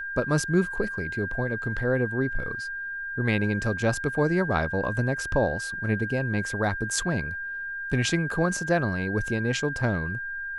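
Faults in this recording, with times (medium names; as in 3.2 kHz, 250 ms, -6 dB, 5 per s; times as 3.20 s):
whine 1.6 kHz -31 dBFS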